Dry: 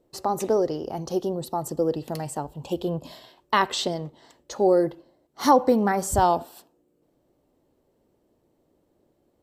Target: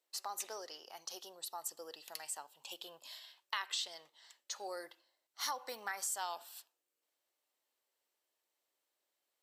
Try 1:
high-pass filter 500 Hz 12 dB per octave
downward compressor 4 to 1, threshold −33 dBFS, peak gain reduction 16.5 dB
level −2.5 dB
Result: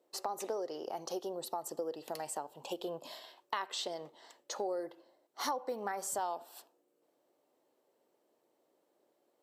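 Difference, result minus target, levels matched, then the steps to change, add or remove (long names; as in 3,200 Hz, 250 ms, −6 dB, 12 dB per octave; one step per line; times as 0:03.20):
500 Hz band +9.0 dB
change: high-pass filter 1,900 Hz 12 dB per octave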